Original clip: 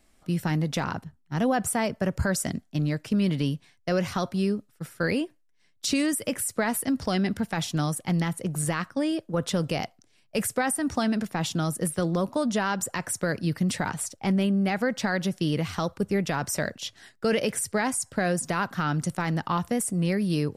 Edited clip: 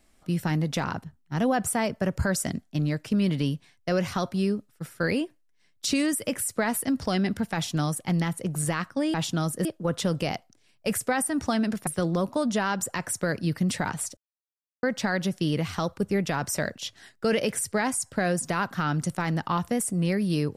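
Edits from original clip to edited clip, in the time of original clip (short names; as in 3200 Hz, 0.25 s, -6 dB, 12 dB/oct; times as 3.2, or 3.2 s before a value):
11.36–11.87 move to 9.14
14.17–14.83 mute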